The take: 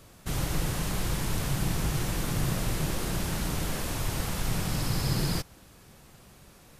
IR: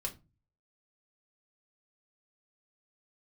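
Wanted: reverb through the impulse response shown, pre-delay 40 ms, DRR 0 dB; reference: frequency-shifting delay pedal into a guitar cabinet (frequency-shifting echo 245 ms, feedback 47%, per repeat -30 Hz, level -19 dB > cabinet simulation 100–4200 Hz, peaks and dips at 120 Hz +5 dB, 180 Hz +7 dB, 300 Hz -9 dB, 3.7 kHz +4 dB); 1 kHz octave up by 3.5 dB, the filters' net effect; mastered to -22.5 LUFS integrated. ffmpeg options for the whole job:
-filter_complex "[0:a]equalizer=f=1000:t=o:g=4.5,asplit=2[s0][s1];[1:a]atrim=start_sample=2205,adelay=40[s2];[s1][s2]afir=irnorm=-1:irlink=0,volume=0.944[s3];[s0][s3]amix=inputs=2:normalize=0,asplit=5[s4][s5][s6][s7][s8];[s5]adelay=245,afreqshift=-30,volume=0.112[s9];[s6]adelay=490,afreqshift=-60,volume=0.0525[s10];[s7]adelay=735,afreqshift=-90,volume=0.0248[s11];[s8]adelay=980,afreqshift=-120,volume=0.0116[s12];[s4][s9][s10][s11][s12]amix=inputs=5:normalize=0,highpass=100,equalizer=f=120:t=q:w=4:g=5,equalizer=f=180:t=q:w=4:g=7,equalizer=f=300:t=q:w=4:g=-9,equalizer=f=3700:t=q:w=4:g=4,lowpass=f=4200:w=0.5412,lowpass=f=4200:w=1.3066,volume=1.5"

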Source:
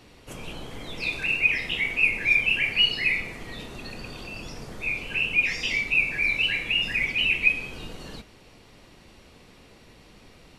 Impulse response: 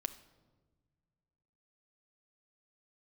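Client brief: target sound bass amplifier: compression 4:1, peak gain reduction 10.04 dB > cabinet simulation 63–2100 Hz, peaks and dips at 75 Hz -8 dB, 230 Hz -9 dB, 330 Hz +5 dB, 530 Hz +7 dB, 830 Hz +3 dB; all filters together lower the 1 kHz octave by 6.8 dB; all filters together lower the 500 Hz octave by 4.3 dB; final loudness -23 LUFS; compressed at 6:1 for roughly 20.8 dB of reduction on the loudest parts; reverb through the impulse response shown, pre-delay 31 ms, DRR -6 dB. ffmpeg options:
-filter_complex "[0:a]equalizer=f=500:t=o:g=-8.5,equalizer=f=1000:t=o:g=-8.5,acompressor=threshold=0.00891:ratio=6,asplit=2[s0][s1];[1:a]atrim=start_sample=2205,adelay=31[s2];[s1][s2]afir=irnorm=-1:irlink=0,volume=2.24[s3];[s0][s3]amix=inputs=2:normalize=0,acompressor=threshold=0.01:ratio=4,highpass=f=63:w=0.5412,highpass=f=63:w=1.3066,equalizer=f=75:t=q:w=4:g=-8,equalizer=f=230:t=q:w=4:g=-9,equalizer=f=330:t=q:w=4:g=5,equalizer=f=530:t=q:w=4:g=7,equalizer=f=830:t=q:w=4:g=3,lowpass=f=2100:w=0.5412,lowpass=f=2100:w=1.3066,volume=16.8"

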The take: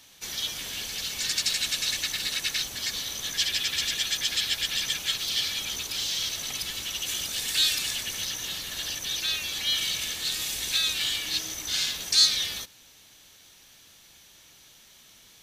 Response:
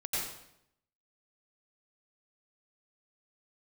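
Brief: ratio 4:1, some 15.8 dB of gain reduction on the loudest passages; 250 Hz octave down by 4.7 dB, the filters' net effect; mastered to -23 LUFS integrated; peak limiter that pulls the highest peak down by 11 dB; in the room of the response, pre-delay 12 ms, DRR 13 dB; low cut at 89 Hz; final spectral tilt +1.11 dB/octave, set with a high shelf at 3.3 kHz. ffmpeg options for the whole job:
-filter_complex "[0:a]highpass=89,equalizer=f=250:t=o:g=-6.5,highshelf=f=3300:g=5.5,acompressor=threshold=0.0316:ratio=4,alimiter=level_in=1.06:limit=0.0631:level=0:latency=1,volume=0.944,asplit=2[s0][s1];[1:a]atrim=start_sample=2205,adelay=12[s2];[s1][s2]afir=irnorm=-1:irlink=0,volume=0.126[s3];[s0][s3]amix=inputs=2:normalize=0,volume=2.82"

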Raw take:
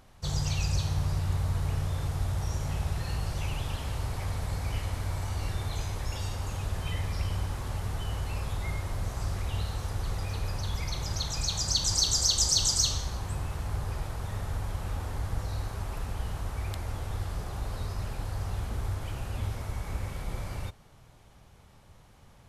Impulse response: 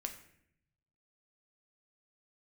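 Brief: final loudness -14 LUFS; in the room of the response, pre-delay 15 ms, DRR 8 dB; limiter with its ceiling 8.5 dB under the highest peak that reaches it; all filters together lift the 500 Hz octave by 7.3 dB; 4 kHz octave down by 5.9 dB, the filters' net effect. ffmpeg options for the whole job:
-filter_complex "[0:a]equalizer=f=500:t=o:g=9,equalizer=f=4000:t=o:g=-7.5,alimiter=limit=0.0794:level=0:latency=1,asplit=2[s0][s1];[1:a]atrim=start_sample=2205,adelay=15[s2];[s1][s2]afir=irnorm=-1:irlink=0,volume=0.473[s3];[s0][s3]amix=inputs=2:normalize=0,volume=9.44"

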